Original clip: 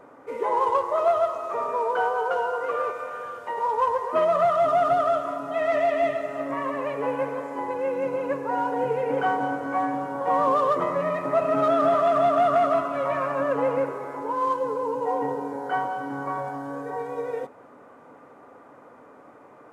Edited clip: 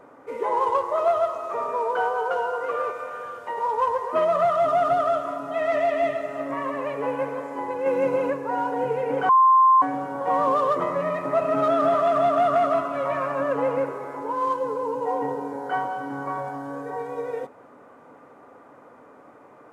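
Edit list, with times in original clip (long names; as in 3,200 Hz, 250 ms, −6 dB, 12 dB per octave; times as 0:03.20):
0:07.86–0:08.30: clip gain +4.5 dB
0:09.29–0:09.82: beep over 1,050 Hz −12 dBFS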